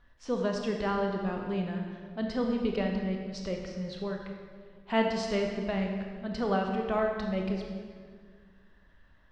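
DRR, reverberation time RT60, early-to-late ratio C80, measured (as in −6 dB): 1.5 dB, 1.8 s, 5.0 dB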